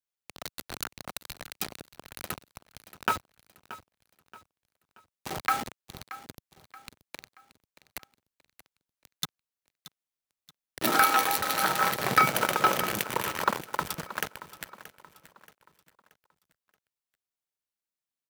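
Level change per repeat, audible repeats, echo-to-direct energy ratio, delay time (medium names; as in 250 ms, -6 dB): -8.0 dB, 3, -15.5 dB, 628 ms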